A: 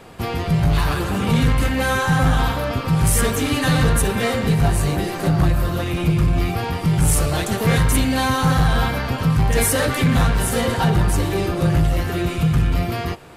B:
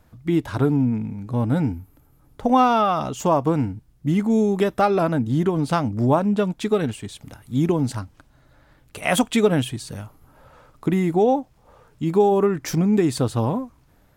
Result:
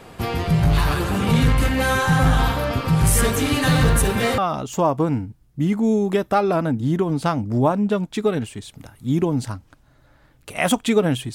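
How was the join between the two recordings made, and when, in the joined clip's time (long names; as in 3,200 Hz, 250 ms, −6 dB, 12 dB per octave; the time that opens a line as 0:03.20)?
A
0:03.55–0:04.38: one scale factor per block 7 bits
0:04.38: continue with B from 0:02.85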